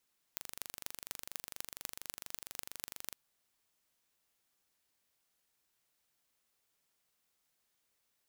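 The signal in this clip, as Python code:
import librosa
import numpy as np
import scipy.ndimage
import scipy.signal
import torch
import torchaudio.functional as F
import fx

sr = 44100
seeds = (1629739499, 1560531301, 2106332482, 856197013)

y = fx.impulse_train(sr, length_s=2.77, per_s=24.3, accent_every=6, level_db=-10.5)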